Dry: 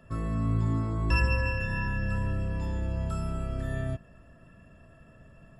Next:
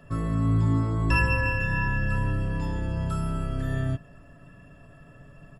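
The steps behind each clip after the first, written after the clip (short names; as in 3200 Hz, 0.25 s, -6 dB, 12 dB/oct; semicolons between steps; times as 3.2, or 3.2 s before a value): comb 7 ms, depth 45%; gain +3.5 dB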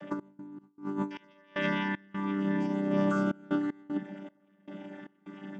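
chord vocoder bare fifth, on G3; negative-ratio compressor -32 dBFS, ratio -0.5; step gate "x.x.xx..xx.xxxxx" 77 bpm -24 dB; gain +2 dB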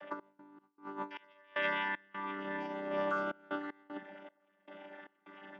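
three-band isolator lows -21 dB, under 460 Hz, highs -24 dB, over 4300 Hz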